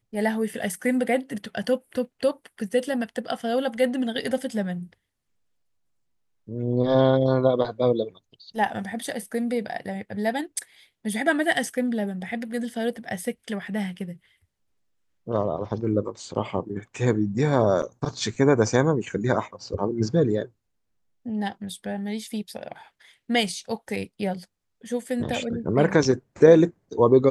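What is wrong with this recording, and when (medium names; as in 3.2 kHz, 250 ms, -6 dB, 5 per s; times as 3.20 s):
17.82–17.83 s: dropout 6.4 ms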